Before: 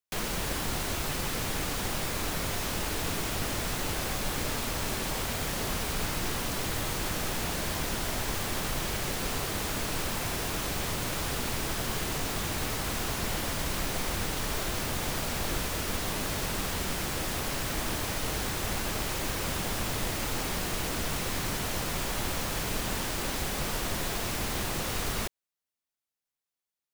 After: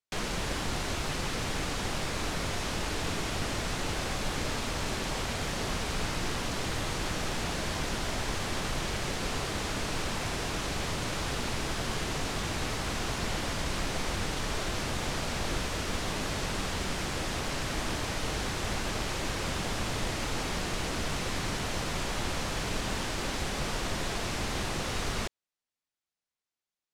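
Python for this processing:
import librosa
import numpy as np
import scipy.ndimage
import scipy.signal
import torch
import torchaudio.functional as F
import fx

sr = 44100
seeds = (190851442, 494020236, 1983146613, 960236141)

y = scipy.signal.sosfilt(scipy.signal.butter(2, 7400.0, 'lowpass', fs=sr, output='sos'), x)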